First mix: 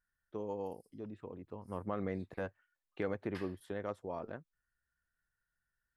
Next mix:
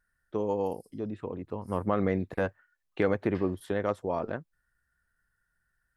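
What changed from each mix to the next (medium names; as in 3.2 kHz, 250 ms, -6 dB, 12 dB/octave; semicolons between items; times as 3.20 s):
first voice +10.5 dB; second voice: add distance through air 100 m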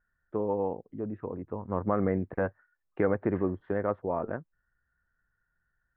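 master: add low-pass 1.8 kHz 24 dB/octave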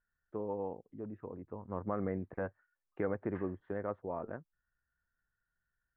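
first voice -8.5 dB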